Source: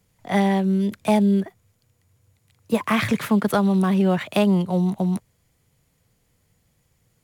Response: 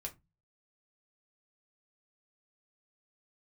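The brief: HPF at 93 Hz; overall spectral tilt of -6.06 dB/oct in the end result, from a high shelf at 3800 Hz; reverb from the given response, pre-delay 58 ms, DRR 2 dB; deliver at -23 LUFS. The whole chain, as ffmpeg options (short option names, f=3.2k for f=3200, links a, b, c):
-filter_complex "[0:a]highpass=93,highshelf=f=3.8k:g=-6.5,asplit=2[a][b];[1:a]atrim=start_sample=2205,adelay=58[c];[b][c]afir=irnorm=-1:irlink=0,volume=0.5dB[d];[a][d]amix=inputs=2:normalize=0,volume=-4dB"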